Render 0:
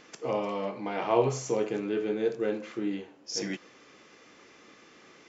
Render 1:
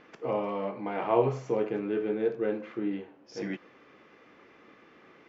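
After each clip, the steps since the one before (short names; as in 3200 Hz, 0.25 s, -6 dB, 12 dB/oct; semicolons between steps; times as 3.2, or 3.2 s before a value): LPF 2300 Hz 12 dB/oct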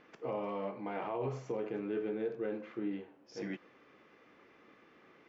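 limiter -22 dBFS, peak gain reduction 11.5 dB; gain -5.5 dB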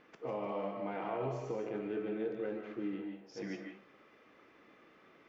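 reverb RT60 0.35 s, pre-delay 0.11 s, DRR 3.5 dB; gain -1.5 dB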